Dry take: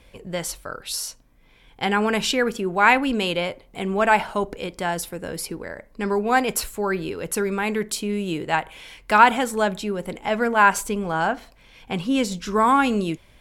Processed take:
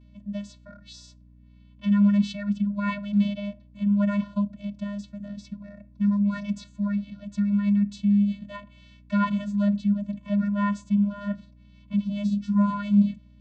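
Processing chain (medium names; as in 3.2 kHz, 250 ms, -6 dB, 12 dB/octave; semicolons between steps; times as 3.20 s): ten-band graphic EQ 250 Hz +9 dB, 500 Hz -4 dB, 4 kHz +9 dB; vocoder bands 16, square 203 Hz; hum 60 Hz, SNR 27 dB; trim -4 dB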